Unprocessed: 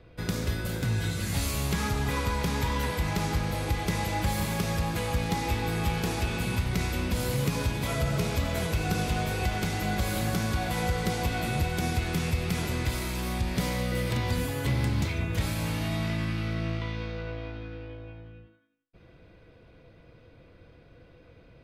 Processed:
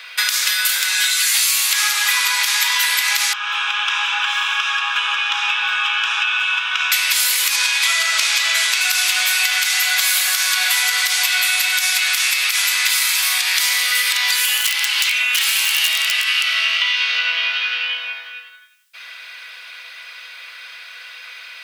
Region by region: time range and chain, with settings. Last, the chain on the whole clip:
0:03.33–0:06.92: high-frequency loss of the air 350 metres + phaser with its sweep stopped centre 3,000 Hz, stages 8
0:07.56–0:08.81: low-pass filter 8,600 Hz + flutter between parallel walls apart 6.5 metres, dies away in 0.23 s
0:14.44–0:18.07: high-pass filter 380 Hz 24 dB per octave + parametric band 2,900 Hz +11.5 dB 0.2 octaves + wrap-around overflow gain 25.5 dB
whole clip: Bessel high-pass filter 2,200 Hz, order 4; downward compressor 5 to 1, threshold −49 dBFS; boost into a limiter +34.5 dB; level −1 dB

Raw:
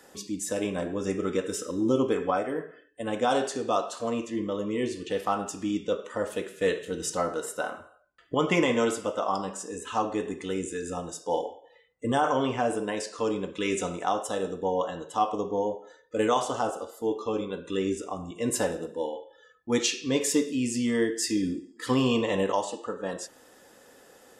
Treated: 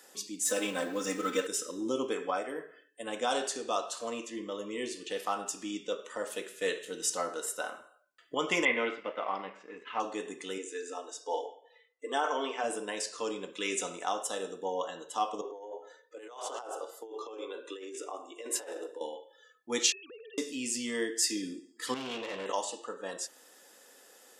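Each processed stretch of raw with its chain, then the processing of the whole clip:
0:00.45–0:01.47: mu-law and A-law mismatch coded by mu + parametric band 1,400 Hz +5 dB 0.5 octaves + comb filter 3.9 ms, depth 91%
0:08.65–0:10.00: mu-law and A-law mismatch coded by A + low-pass filter 3,000 Hz 24 dB per octave + parametric band 2,100 Hz +11.5 dB 0.34 octaves
0:10.58–0:12.64: linear-phase brick-wall high-pass 260 Hz + high-frequency loss of the air 78 metres + comb filter 4.5 ms, depth 42%
0:15.41–0:19.01: Butterworth high-pass 320 Hz + high-shelf EQ 2,700 Hz −9 dB + compressor whose output falls as the input rises −35 dBFS
0:19.92–0:20.38: three sine waves on the formant tracks + phaser with its sweep stopped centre 1,400 Hz, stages 8 + downward compressor 12 to 1, threshold −39 dBFS
0:21.94–0:22.46: low-pass filter 5,000 Hz + tube saturation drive 27 dB, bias 0.6
whole clip: high-pass filter 270 Hz 12 dB per octave; high-shelf EQ 2,100 Hz +9.5 dB; level −7 dB

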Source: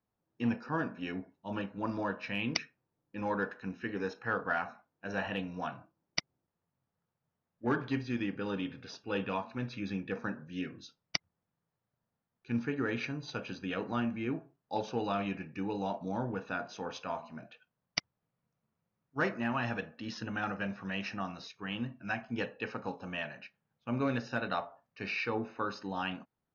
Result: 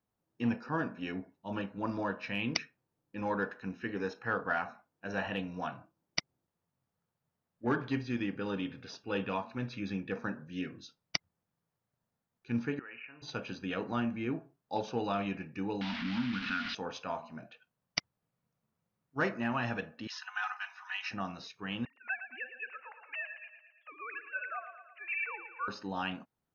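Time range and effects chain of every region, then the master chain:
0:12.79–0:13.22: linear-phase brick-wall low-pass 3,000 Hz + first difference + envelope flattener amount 50%
0:15.81–0:16.75: linear delta modulator 32 kbit/s, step −35.5 dBFS + drawn EQ curve 160 Hz 0 dB, 250 Hz +14 dB, 380 Hz −18 dB, 540 Hz −20 dB, 1,400 Hz +8 dB, 3,000 Hz +10 dB, 4,900 Hz +2 dB, 7,600 Hz −17 dB + downward compressor 2 to 1, threshold −33 dBFS
0:20.07–0:21.11: Butterworth high-pass 810 Hz 72 dB per octave + comb filter 4 ms, depth 72%
0:21.85–0:25.68: three sine waves on the formant tracks + high-pass filter 1,400 Hz + repeating echo 113 ms, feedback 56%, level −10 dB
whole clip: no processing

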